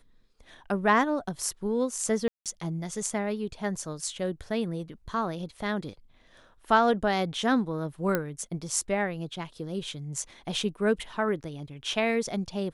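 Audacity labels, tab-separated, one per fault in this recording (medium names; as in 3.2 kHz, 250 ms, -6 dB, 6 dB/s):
2.280000	2.460000	dropout 177 ms
8.150000	8.150000	pop -12 dBFS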